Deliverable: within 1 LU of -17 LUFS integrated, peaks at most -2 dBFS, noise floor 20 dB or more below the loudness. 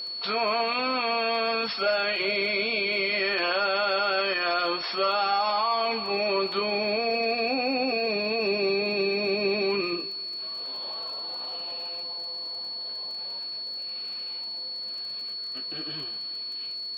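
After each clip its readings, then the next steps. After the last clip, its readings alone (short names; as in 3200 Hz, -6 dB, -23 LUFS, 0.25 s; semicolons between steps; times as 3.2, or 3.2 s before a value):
ticks 27/s; steady tone 4400 Hz; tone level -32 dBFS; loudness -27.0 LUFS; peak -13.0 dBFS; loudness target -17.0 LUFS
-> de-click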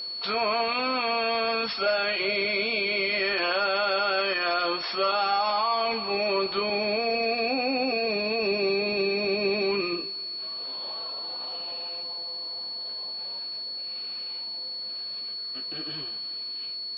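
ticks 0.059/s; steady tone 4400 Hz; tone level -32 dBFS
-> notch 4400 Hz, Q 30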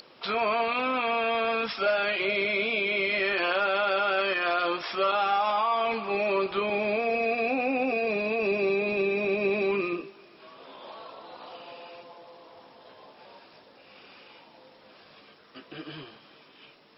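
steady tone none; loudness -26.5 LUFS; peak -13.5 dBFS; loudness target -17.0 LUFS
-> gain +9.5 dB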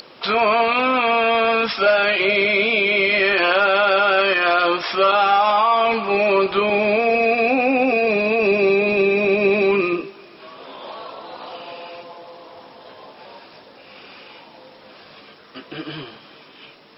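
loudness -17.0 LUFS; peak -4.0 dBFS; noise floor -46 dBFS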